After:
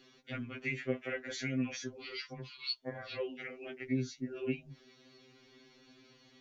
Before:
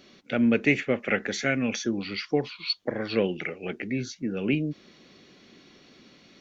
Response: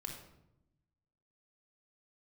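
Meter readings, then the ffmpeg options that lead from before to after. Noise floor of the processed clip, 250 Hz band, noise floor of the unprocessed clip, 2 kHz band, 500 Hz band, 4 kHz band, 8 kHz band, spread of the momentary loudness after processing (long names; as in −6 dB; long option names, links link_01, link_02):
−64 dBFS, −12.5 dB, −56 dBFS, −12.0 dB, −12.5 dB, −8.5 dB, can't be measured, 9 LU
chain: -af "acompressor=threshold=-29dB:ratio=2,afftfilt=real='re*2.45*eq(mod(b,6),0)':imag='im*2.45*eq(mod(b,6),0)':win_size=2048:overlap=0.75,volume=-5dB"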